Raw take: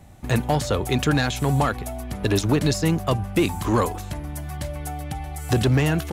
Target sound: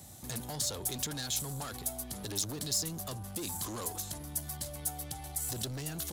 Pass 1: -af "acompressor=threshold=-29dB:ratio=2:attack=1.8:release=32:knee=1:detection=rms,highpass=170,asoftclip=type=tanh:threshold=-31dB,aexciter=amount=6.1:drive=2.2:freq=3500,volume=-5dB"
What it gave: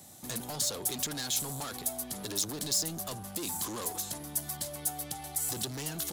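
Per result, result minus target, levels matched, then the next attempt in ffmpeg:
125 Hz band −5.0 dB; downward compressor: peak gain reduction −3.5 dB
-af "acompressor=threshold=-29dB:ratio=2:attack=1.8:release=32:knee=1:detection=rms,highpass=75,asoftclip=type=tanh:threshold=-31dB,aexciter=amount=6.1:drive=2.2:freq=3500,volume=-5dB"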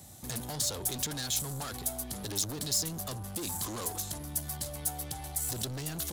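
downward compressor: peak gain reduction −3.5 dB
-af "acompressor=threshold=-36.5dB:ratio=2:attack=1.8:release=32:knee=1:detection=rms,highpass=75,asoftclip=type=tanh:threshold=-31dB,aexciter=amount=6.1:drive=2.2:freq=3500,volume=-5dB"

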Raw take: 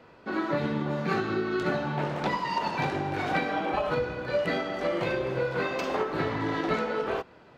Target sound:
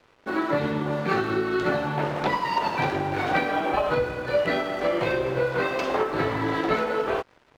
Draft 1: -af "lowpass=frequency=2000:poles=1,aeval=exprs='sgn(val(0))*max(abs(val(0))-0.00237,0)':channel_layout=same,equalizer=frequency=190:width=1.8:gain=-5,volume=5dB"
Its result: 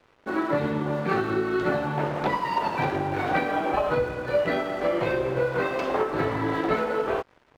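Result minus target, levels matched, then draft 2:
4,000 Hz band −3.5 dB
-af "lowpass=frequency=5400:poles=1,aeval=exprs='sgn(val(0))*max(abs(val(0))-0.00237,0)':channel_layout=same,equalizer=frequency=190:width=1.8:gain=-5,volume=5dB"

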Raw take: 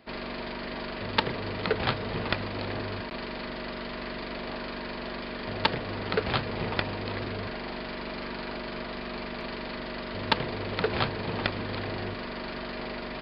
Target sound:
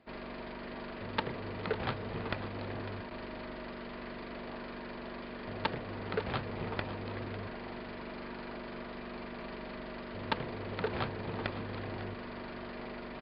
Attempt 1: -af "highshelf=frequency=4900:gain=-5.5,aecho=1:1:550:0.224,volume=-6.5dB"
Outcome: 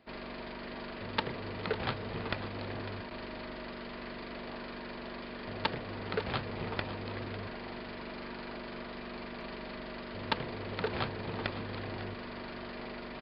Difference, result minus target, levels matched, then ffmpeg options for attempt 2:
4,000 Hz band +3.0 dB
-af "highshelf=frequency=4900:gain=-16.5,aecho=1:1:550:0.224,volume=-6.5dB"

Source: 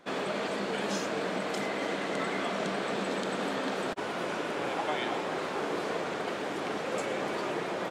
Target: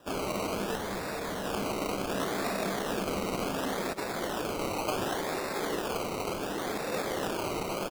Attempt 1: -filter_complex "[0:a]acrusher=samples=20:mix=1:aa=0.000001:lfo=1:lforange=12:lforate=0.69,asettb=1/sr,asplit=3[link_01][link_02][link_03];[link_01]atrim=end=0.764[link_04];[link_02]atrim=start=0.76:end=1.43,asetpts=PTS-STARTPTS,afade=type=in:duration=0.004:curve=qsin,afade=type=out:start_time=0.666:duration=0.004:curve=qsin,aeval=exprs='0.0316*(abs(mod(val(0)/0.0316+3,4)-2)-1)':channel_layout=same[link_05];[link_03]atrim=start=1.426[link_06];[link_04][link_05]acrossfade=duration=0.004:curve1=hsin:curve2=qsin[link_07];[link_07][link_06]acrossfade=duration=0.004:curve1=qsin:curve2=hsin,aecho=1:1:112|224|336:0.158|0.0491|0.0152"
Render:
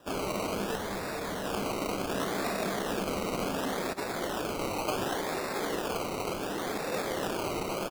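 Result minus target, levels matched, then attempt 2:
echo 45 ms early
-filter_complex "[0:a]acrusher=samples=20:mix=1:aa=0.000001:lfo=1:lforange=12:lforate=0.69,asettb=1/sr,asplit=3[link_01][link_02][link_03];[link_01]atrim=end=0.764[link_04];[link_02]atrim=start=0.76:end=1.43,asetpts=PTS-STARTPTS,afade=type=in:duration=0.004:curve=qsin,afade=type=out:start_time=0.666:duration=0.004:curve=qsin,aeval=exprs='0.0316*(abs(mod(val(0)/0.0316+3,4)-2)-1)':channel_layout=same[link_05];[link_03]atrim=start=1.426[link_06];[link_04][link_05]acrossfade=duration=0.004:curve1=hsin:curve2=qsin[link_07];[link_07][link_06]acrossfade=duration=0.004:curve1=qsin:curve2=hsin,aecho=1:1:157|314|471:0.158|0.0491|0.0152"

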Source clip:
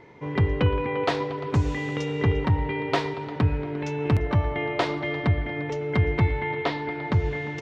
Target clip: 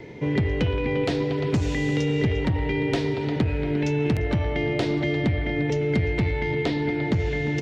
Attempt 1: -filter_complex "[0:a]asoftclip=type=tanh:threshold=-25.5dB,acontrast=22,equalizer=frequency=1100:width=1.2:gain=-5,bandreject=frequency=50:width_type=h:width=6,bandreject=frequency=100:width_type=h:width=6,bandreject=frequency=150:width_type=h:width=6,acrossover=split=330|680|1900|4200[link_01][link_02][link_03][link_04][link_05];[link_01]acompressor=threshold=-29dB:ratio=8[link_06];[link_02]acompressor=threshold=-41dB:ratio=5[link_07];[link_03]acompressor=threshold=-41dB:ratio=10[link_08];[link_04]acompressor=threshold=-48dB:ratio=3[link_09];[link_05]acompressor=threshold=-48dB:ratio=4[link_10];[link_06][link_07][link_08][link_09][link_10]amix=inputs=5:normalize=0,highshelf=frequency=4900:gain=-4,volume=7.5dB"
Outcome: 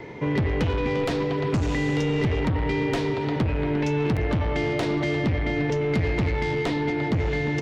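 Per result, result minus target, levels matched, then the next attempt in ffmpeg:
soft clipping: distortion +8 dB; 1,000 Hz band +3.5 dB
-filter_complex "[0:a]asoftclip=type=tanh:threshold=-17dB,acontrast=22,equalizer=frequency=1100:width=1.2:gain=-5,bandreject=frequency=50:width_type=h:width=6,bandreject=frequency=100:width_type=h:width=6,bandreject=frequency=150:width_type=h:width=6,acrossover=split=330|680|1900|4200[link_01][link_02][link_03][link_04][link_05];[link_01]acompressor=threshold=-29dB:ratio=8[link_06];[link_02]acompressor=threshold=-41dB:ratio=5[link_07];[link_03]acompressor=threshold=-41dB:ratio=10[link_08];[link_04]acompressor=threshold=-48dB:ratio=3[link_09];[link_05]acompressor=threshold=-48dB:ratio=4[link_10];[link_06][link_07][link_08][link_09][link_10]amix=inputs=5:normalize=0,highshelf=frequency=4900:gain=-4,volume=7.5dB"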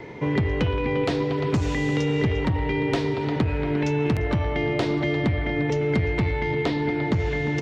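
1,000 Hz band +3.5 dB
-filter_complex "[0:a]asoftclip=type=tanh:threshold=-17dB,acontrast=22,equalizer=frequency=1100:width=1.2:gain=-15,bandreject=frequency=50:width_type=h:width=6,bandreject=frequency=100:width_type=h:width=6,bandreject=frequency=150:width_type=h:width=6,acrossover=split=330|680|1900|4200[link_01][link_02][link_03][link_04][link_05];[link_01]acompressor=threshold=-29dB:ratio=8[link_06];[link_02]acompressor=threshold=-41dB:ratio=5[link_07];[link_03]acompressor=threshold=-41dB:ratio=10[link_08];[link_04]acompressor=threshold=-48dB:ratio=3[link_09];[link_05]acompressor=threshold=-48dB:ratio=4[link_10];[link_06][link_07][link_08][link_09][link_10]amix=inputs=5:normalize=0,highshelf=frequency=4900:gain=-4,volume=7.5dB"

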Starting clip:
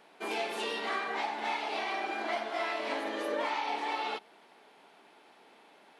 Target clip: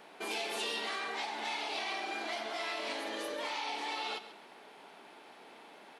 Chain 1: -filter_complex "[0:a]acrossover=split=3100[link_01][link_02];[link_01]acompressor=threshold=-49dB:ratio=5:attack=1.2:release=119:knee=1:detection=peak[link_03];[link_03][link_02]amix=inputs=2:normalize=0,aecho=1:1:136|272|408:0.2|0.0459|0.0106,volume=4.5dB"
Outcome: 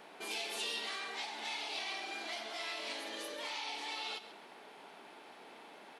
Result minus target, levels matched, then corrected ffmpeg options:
downward compressor: peak gain reduction +6.5 dB
-filter_complex "[0:a]acrossover=split=3100[link_01][link_02];[link_01]acompressor=threshold=-41dB:ratio=5:attack=1.2:release=119:knee=1:detection=peak[link_03];[link_03][link_02]amix=inputs=2:normalize=0,aecho=1:1:136|272|408:0.2|0.0459|0.0106,volume=4.5dB"

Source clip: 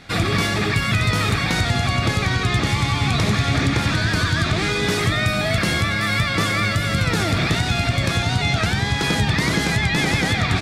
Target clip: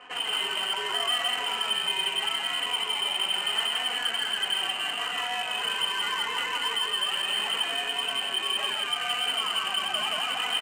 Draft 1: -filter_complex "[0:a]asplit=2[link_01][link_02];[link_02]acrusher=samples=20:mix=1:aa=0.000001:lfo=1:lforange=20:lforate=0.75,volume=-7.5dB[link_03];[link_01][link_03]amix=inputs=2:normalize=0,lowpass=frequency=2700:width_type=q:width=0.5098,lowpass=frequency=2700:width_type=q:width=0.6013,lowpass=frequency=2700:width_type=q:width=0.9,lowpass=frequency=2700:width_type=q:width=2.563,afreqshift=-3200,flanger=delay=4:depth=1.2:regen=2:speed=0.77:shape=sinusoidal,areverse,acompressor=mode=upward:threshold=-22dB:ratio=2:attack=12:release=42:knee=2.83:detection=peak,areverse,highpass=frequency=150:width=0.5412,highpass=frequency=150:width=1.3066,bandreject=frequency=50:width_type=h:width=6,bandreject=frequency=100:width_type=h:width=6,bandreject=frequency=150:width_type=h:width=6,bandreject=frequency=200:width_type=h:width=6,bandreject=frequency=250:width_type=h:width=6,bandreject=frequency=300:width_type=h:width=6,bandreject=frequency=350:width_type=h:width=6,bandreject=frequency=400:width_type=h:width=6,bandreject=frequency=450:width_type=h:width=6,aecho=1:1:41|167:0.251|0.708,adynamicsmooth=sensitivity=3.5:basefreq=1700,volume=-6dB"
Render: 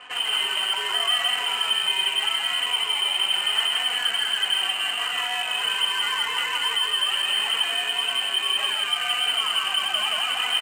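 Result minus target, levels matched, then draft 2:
500 Hz band −5.5 dB
-filter_complex "[0:a]asplit=2[link_01][link_02];[link_02]acrusher=samples=20:mix=1:aa=0.000001:lfo=1:lforange=20:lforate=0.75,volume=-7.5dB[link_03];[link_01][link_03]amix=inputs=2:normalize=0,lowpass=frequency=2700:width_type=q:width=0.5098,lowpass=frequency=2700:width_type=q:width=0.6013,lowpass=frequency=2700:width_type=q:width=0.9,lowpass=frequency=2700:width_type=q:width=2.563,afreqshift=-3200,flanger=delay=4:depth=1.2:regen=2:speed=0.77:shape=sinusoidal,areverse,acompressor=mode=upward:threshold=-22dB:ratio=2:attack=12:release=42:knee=2.83:detection=peak,areverse,highpass=frequency=150:width=0.5412,highpass=frequency=150:width=1.3066,tiltshelf=frequency=670:gain=5,bandreject=frequency=50:width_type=h:width=6,bandreject=frequency=100:width_type=h:width=6,bandreject=frequency=150:width_type=h:width=6,bandreject=frequency=200:width_type=h:width=6,bandreject=frequency=250:width_type=h:width=6,bandreject=frequency=300:width_type=h:width=6,bandreject=frequency=350:width_type=h:width=6,bandreject=frequency=400:width_type=h:width=6,bandreject=frequency=450:width_type=h:width=6,aecho=1:1:41|167:0.251|0.708,adynamicsmooth=sensitivity=3.5:basefreq=1700,volume=-6dB"

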